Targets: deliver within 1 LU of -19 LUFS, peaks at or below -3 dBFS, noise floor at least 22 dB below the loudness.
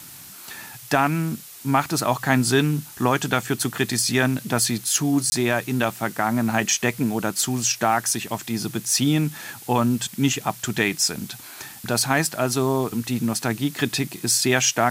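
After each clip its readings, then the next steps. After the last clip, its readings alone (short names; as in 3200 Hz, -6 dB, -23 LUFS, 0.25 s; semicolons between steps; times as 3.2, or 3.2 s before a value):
dropouts 1; longest dropout 20 ms; noise floor -42 dBFS; noise floor target -44 dBFS; loudness -22.0 LUFS; peak -3.5 dBFS; loudness target -19.0 LUFS
-> interpolate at 5.3, 20 ms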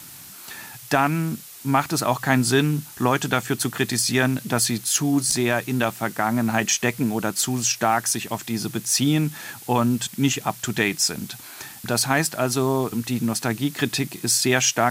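dropouts 0; noise floor -42 dBFS; noise floor target -44 dBFS
-> denoiser 6 dB, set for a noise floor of -42 dBFS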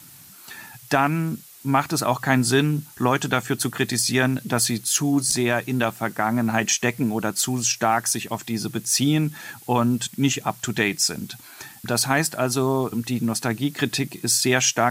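noise floor -46 dBFS; loudness -22.0 LUFS; peak -4.0 dBFS; loudness target -19.0 LUFS
-> gain +3 dB; limiter -3 dBFS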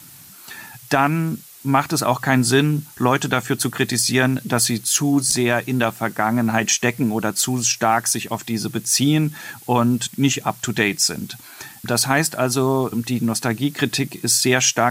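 loudness -19.5 LUFS; peak -3.0 dBFS; noise floor -43 dBFS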